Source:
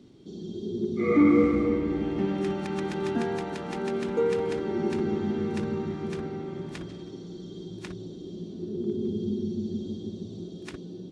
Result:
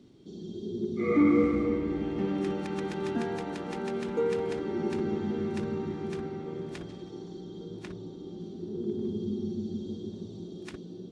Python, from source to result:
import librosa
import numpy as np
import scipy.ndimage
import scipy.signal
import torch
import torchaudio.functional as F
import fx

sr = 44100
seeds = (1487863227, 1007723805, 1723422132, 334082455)

y = fx.high_shelf(x, sr, hz=4600.0, db=-5.0, at=(7.4, 8.4))
y = fx.echo_wet_bandpass(y, sr, ms=1145, feedback_pct=65, hz=520.0, wet_db=-16)
y = y * 10.0 ** (-3.0 / 20.0)